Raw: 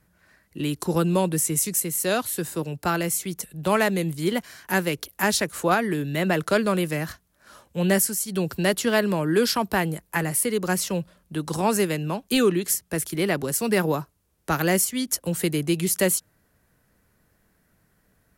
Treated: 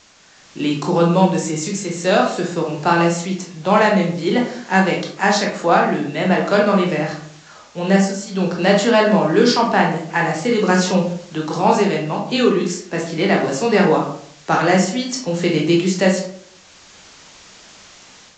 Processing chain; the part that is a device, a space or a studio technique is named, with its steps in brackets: filmed off a television (BPF 170–7900 Hz; bell 790 Hz +6 dB 0.52 oct; reverb RT60 0.60 s, pre-delay 17 ms, DRR -1 dB; white noise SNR 25 dB; AGC gain up to 7 dB; AAC 48 kbps 16000 Hz)

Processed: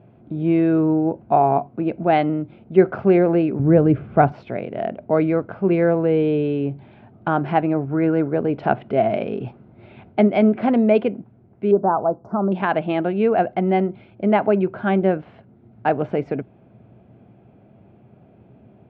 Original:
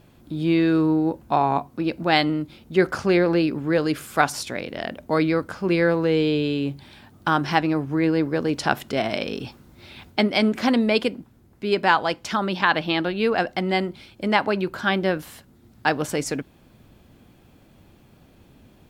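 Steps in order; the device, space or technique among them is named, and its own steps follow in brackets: 3.59–4.32 RIAA curve playback; 7.88–8.33 bell 1400 Hz +10.5 dB 0.25 oct; 11.71–12.52 Chebyshev band-stop 1200–6100 Hz, order 3; bass cabinet (speaker cabinet 80–2300 Hz, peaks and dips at 120 Hz +10 dB, 200 Hz +7 dB, 400 Hz +7 dB, 670 Hz +10 dB, 1100 Hz -4 dB, 1800 Hz -7 dB); gain -1 dB

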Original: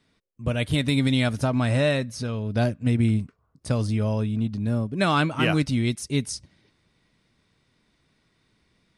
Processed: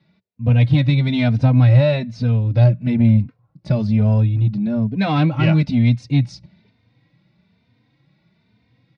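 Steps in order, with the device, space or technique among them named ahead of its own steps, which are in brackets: barber-pole flanger into a guitar amplifier (endless flanger 3.1 ms +1.1 Hz; soft clip -18 dBFS, distortion -18 dB; speaker cabinet 91–4000 Hz, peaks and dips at 120 Hz +9 dB, 180 Hz +6 dB, 400 Hz -8 dB, 1200 Hz -9 dB, 1700 Hz -6 dB, 3100 Hz -8 dB); gain +9 dB

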